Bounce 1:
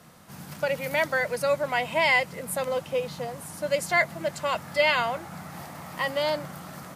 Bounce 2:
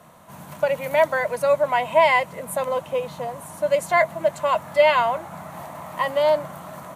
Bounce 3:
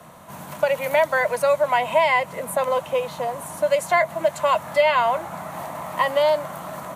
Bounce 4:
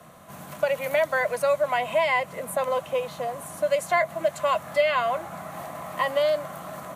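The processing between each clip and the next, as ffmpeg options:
-af "equalizer=f=630:t=o:w=0.33:g=10,equalizer=f=1k:t=o:w=0.33:g=10,equalizer=f=5k:t=o:w=0.33:g=-10"
-filter_complex "[0:a]acrossover=split=220|460|2500[a][b][c][d];[a]acompressor=threshold=-48dB:ratio=4[e];[b]acompressor=threshold=-40dB:ratio=4[f];[c]acompressor=threshold=-21dB:ratio=4[g];[d]acompressor=threshold=-35dB:ratio=4[h];[e][f][g][h]amix=inputs=4:normalize=0,volume=4.5dB"
-af "asuperstop=centerf=920:order=4:qfactor=7.4,volume=-3.5dB"

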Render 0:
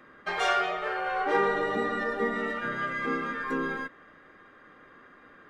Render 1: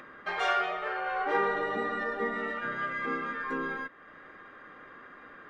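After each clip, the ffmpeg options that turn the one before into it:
-filter_complex "[0:a]lowpass=f=2.3k:p=1,tiltshelf=f=630:g=-3.5,asplit=2[a][b];[b]acompressor=mode=upward:threshold=-32dB:ratio=2.5,volume=-2dB[c];[a][c]amix=inputs=2:normalize=0,volume=-7.5dB"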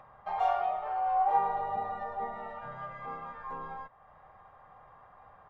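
-af "firequalizer=gain_entry='entry(110,0);entry(280,-27);entry(770,3);entry(1500,-22);entry(2600,-19);entry(5000,-21)':delay=0.05:min_phase=1,volume=5dB"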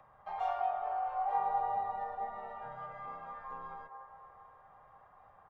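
-filter_complex "[0:a]acrossover=split=170|410|1700[a][b][c][d];[b]acompressor=threshold=-58dB:ratio=6[e];[c]aecho=1:1:200|420|662|928.2|1221:0.631|0.398|0.251|0.158|0.1[f];[a][e][f][d]amix=inputs=4:normalize=0,volume=-6dB"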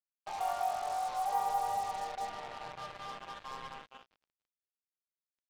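-af "acrusher=bits=6:mix=0:aa=0.5"

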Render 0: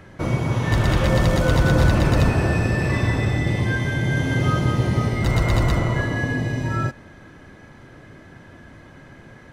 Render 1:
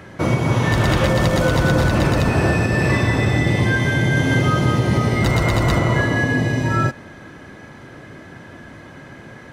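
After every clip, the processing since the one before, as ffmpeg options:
-af "highpass=f=110:p=1,alimiter=limit=-13.5dB:level=0:latency=1:release=154,volume=6.5dB"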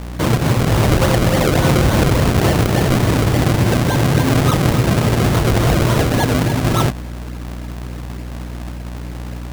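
-af "aeval=exprs='val(0)+0.0355*(sin(2*PI*60*n/s)+sin(2*PI*2*60*n/s)/2+sin(2*PI*3*60*n/s)/3+sin(2*PI*4*60*n/s)/4+sin(2*PI*5*60*n/s)/5)':c=same,acrusher=samples=34:mix=1:aa=0.000001:lfo=1:lforange=34:lforate=3.5,volume=2.5dB"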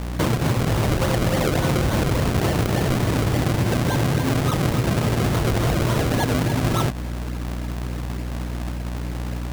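-af "acompressor=threshold=-17dB:ratio=6"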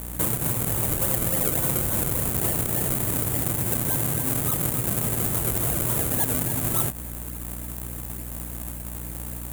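-af "aexciter=amount=12.2:drive=3.9:freq=7.5k,volume=-8.5dB"

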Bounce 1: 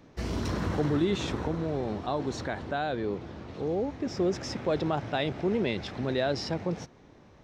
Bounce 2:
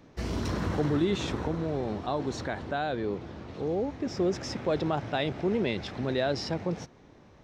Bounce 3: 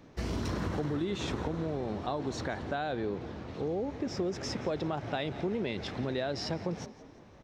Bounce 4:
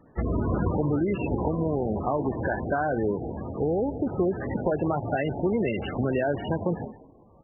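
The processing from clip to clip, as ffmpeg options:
-af anull
-filter_complex "[0:a]asplit=5[a][b][c][d][e];[b]adelay=172,afreqshift=48,volume=-20dB[f];[c]adelay=344,afreqshift=96,volume=-26.6dB[g];[d]adelay=516,afreqshift=144,volume=-33.1dB[h];[e]adelay=688,afreqshift=192,volume=-39.7dB[i];[a][f][g][h][i]amix=inputs=5:normalize=0,acompressor=threshold=-29dB:ratio=6"
-af "aexciter=amount=4.6:drive=3.4:freq=3.5k,agate=range=-8dB:threshold=-48dB:ratio=16:detection=peak,volume=8dB" -ar 24000 -c:a libmp3lame -b:a 8k

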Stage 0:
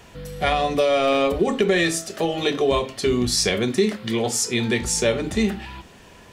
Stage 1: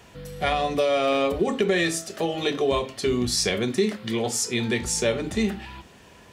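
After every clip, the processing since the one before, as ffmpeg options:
-af "highpass=46,volume=-3dB"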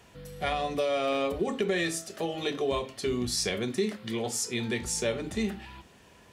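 -af "equalizer=f=11k:t=o:w=0.6:g=2.5,volume=-6dB"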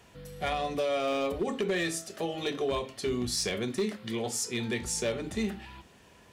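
-af "asoftclip=type=hard:threshold=-22dB,volume=-1dB"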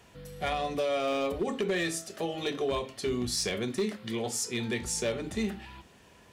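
-af anull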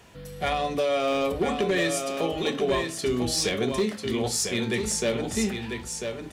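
-af "aecho=1:1:995:0.501,volume=4.5dB"

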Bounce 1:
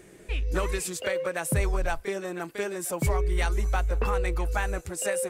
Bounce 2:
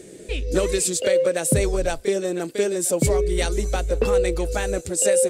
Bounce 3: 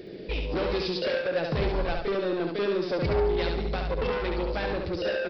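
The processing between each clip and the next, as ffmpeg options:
-af "equalizer=f=125:t=o:w=1:g=4,equalizer=f=250:t=o:w=1:g=8,equalizer=f=500:t=o:w=1:g=11,equalizer=f=1k:t=o:w=1:g=-6,equalizer=f=4k:t=o:w=1:g=8,equalizer=f=8k:t=o:w=1:g=11"
-af "aresample=11025,asoftclip=type=tanh:threshold=-24.5dB,aresample=44100,aecho=1:1:70|140|210|280|350:0.631|0.233|0.0864|0.032|0.0118"

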